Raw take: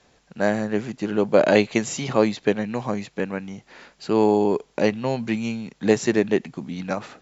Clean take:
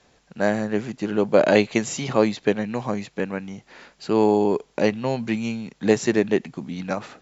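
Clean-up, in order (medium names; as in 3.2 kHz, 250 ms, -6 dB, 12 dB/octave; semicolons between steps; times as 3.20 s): nothing to do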